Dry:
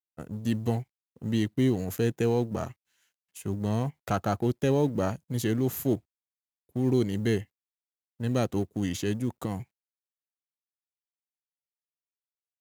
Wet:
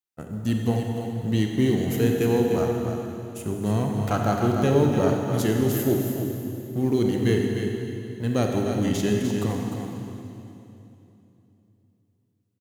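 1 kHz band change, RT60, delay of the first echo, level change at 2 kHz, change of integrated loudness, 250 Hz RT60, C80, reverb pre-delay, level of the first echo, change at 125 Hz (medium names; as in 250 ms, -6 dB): +5.5 dB, 3.0 s, 301 ms, +5.5 dB, +4.5 dB, 3.5 s, 1.5 dB, 28 ms, -7.0 dB, +5.0 dB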